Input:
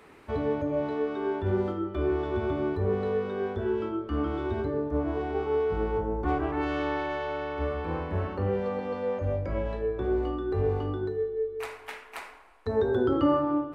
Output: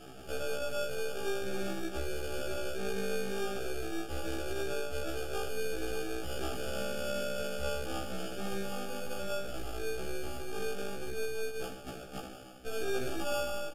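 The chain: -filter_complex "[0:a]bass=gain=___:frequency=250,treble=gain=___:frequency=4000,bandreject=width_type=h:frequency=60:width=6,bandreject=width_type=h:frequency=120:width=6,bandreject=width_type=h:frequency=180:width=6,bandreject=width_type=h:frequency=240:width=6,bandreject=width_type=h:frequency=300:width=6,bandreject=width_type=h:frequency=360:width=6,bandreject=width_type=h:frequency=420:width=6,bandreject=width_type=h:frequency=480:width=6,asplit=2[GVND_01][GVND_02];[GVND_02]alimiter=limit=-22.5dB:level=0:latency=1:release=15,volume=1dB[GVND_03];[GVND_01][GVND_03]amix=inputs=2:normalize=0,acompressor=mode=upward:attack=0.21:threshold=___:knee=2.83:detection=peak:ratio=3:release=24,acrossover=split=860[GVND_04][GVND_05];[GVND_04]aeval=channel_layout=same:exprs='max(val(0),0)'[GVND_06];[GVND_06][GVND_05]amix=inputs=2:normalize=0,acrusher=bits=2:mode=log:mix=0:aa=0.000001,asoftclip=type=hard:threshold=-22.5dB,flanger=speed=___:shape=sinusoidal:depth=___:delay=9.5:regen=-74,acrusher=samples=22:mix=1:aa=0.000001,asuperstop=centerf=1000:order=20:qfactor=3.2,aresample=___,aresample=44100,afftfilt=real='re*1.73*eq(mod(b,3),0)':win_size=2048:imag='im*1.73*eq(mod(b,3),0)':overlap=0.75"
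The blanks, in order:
-4, 5, -31dB, 0.64, 4.8, 32000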